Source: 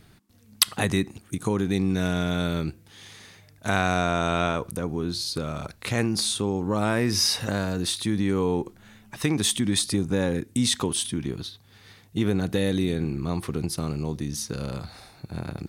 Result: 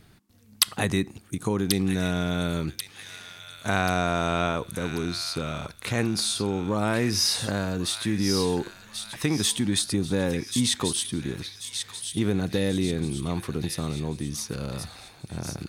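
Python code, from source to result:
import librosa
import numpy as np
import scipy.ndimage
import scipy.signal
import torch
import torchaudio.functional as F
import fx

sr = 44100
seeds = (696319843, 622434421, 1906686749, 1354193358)

y = fx.echo_wet_highpass(x, sr, ms=1087, feedback_pct=45, hz=1900.0, wet_db=-6.0)
y = y * 10.0 ** (-1.0 / 20.0)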